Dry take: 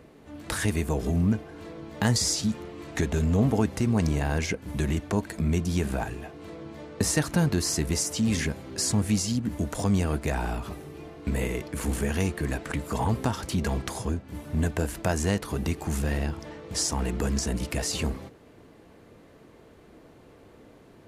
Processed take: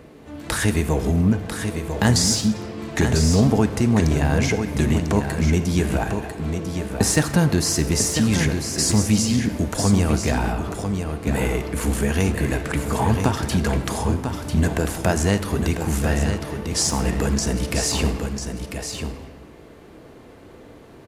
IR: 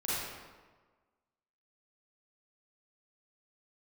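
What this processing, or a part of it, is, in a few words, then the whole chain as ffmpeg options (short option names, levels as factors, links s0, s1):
saturated reverb return: -filter_complex "[0:a]asplit=2[s0][s1];[1:a]atrim=start_sample=2205[s2];[s1][s2]afir=irnorm=-1:irlink=0,asoftclip=type=tanh:threshold=0.1,volume=0.237[s3];[s0][s3]amix=inputs=2:normalize=0,asettb=1/sr,asplit=3[s4][s5][s6];[s4]atrim=end=10.524[s7];[s5]atrim=start=10.52:end=11.09,asetpts=PTS-STARTPTS,afade=t=in:d=0.004:c=qsin,afade=t=out:st=0.566:d=0.004:c=qsin,highshelf=f=4000:g=-9.5[s8];[s6]atrim=start=11.086[s9];[s7][s8]acrossfade=d=0.004:c1=hsin:c2=qsin[s10];[s10][s9]acrossfade=d=0.004:c1=qsin:c2=hsin,aecho=1:1:996:0.447,volume=1.78"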